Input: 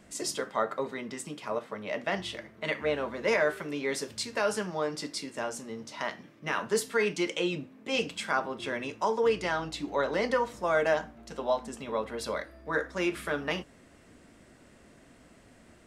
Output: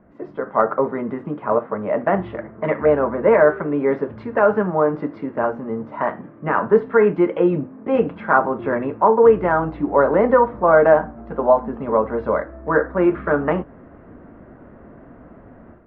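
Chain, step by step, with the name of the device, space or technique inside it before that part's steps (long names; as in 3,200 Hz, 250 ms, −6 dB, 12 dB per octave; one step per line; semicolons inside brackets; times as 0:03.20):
action camera in a waterproof case (low-pass filter 1,400 Hz 24 dB per octave; automatic gain control gain up to 10 dB; level +4 dB; AAC 48 kbit/s 48,000 Hz)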